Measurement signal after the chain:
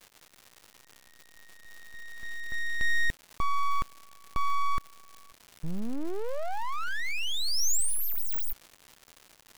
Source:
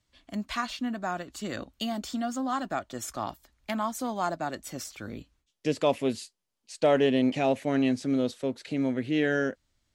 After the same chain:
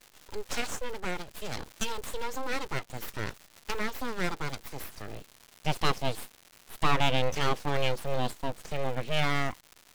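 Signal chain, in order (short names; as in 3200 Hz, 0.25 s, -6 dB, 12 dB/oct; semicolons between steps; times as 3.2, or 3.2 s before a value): dynamic EQ 3400 Hz, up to +7 dB, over -49 dBFS, Q 1.3; crackle 260/s -38 dBFS; full-wave rectifier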